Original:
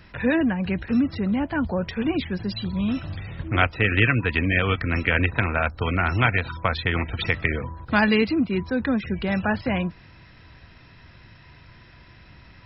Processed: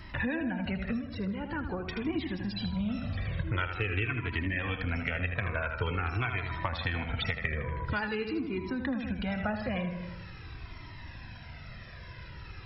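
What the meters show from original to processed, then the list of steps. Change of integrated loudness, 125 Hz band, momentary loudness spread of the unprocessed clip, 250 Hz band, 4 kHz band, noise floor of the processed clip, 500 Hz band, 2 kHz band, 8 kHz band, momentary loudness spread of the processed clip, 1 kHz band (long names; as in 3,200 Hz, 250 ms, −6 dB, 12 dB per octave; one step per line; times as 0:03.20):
−9.5 dB, −7.5 dB, 7 LU, −10.0 dB, −8.5 dB, −46 dBFS, −10.0 dB, −10.0 dB, can't be measured, 14 LU, −9.5 dB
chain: feedback echo with a low-pass in the loop 79 ms, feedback 53%, low-pass 4,600 Hz, level −8 dB
downward compressor 5 to 1, threshold −32 dBFS, peak gain reduction 16.5 dB
flanger whose copies keep moving one way falling 0.46 Hz
level +6 dB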